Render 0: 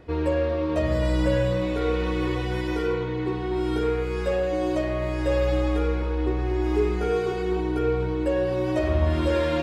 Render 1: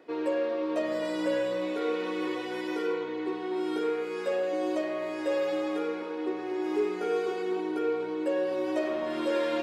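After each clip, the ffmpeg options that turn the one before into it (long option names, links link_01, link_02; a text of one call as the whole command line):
ffmpeg -i in.wav -af "highpass=frequency=250:width=0.5412,highpass=frequency=250:width=1.3066,volume=-4dB" out.wav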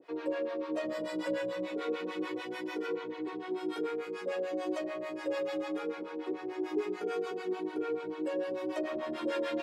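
ffmpeg -i in.wav -filter_complex "[0:a]acrossover=split=590[link_01][link_02];[link_01]aeval=exprs='val(0)*(1-1/2+1/2*cos(2*PI*6.8*n/s))':channel_layout=same[link_03];[link_02]aeval=exprs='val(0)*(1-1/2-1/2*cos(2*PI*6.8*n/s))':channel_layout=same[link_04];[link_03][link_04]amix=inputs=2:normalize=0" out.wav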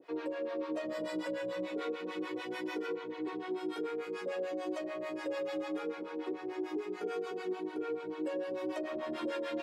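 ffmpeg -i in.wav -af "alimiter=level_in=4dB:limit=-24dB:level=0:latency=1:release=332,volume=-4dB" out.wav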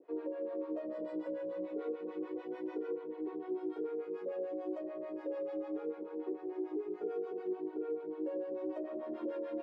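ffmpeg -i in.wav -af "bandpass=frequency=410:width_type=q:width=1.2:csg=0" out.wav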